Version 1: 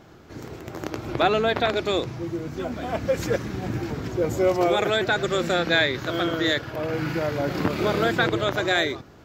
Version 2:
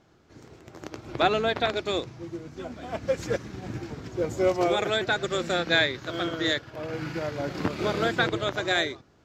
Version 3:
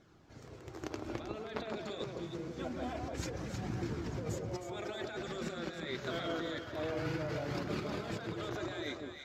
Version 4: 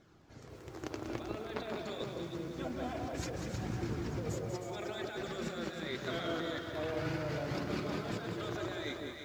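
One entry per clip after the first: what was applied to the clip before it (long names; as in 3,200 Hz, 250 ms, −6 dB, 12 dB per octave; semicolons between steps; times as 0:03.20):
low-pass filter 8,100 Hz 12 dB per octave; high-shelf EQ 5,700 Hz +7 dB; expander for the loud parts 1.5 to 1, over −37 dBFS; level −1.5 dB
flanger 0.26 Hz, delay 0.5 ms, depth 5.1 ms, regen −42%; compressor whose output falls as the input rises −37 dBFS, ratio −1; delay that swaps between a low-pass and a high-pass 157 ms, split 1,200 Hz, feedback 56%, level −2 dB; level −4.5 dB
feedback echo at a low word length 192 ms, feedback 35%, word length 10 bits, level −7 dB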